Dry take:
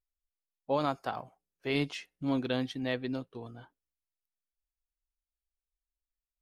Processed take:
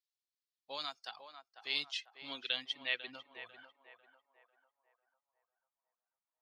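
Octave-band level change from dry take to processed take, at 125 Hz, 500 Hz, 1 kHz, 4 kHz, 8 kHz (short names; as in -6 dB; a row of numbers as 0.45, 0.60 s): -30.5, -17.0, -12.5, +4.5, -2.5 dB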